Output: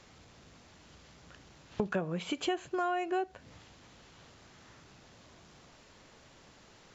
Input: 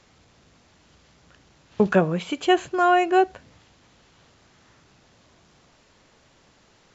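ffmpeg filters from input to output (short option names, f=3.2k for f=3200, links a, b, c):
-af "acompressor=threshold=-31dB:ratio=5"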